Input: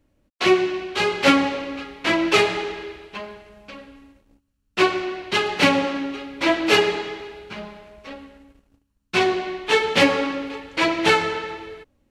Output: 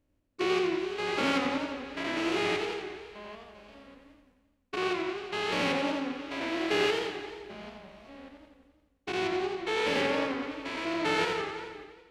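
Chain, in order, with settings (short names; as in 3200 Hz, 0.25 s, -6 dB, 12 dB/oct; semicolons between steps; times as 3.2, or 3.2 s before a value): stepped spectrum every 0.2 s; 10.01–10.43 high shelf 6300 Hz -8.5 dB; warbling echo 87 ms, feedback 62%, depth 157 cents, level -5.5 dB; gain -8.5 dB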